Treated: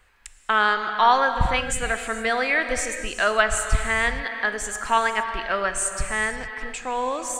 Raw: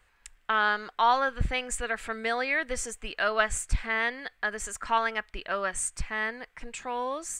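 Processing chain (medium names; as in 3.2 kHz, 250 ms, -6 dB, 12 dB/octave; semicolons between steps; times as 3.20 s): gated-style reverb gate 490 ms flat, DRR 7 dB; trim +5.5 dB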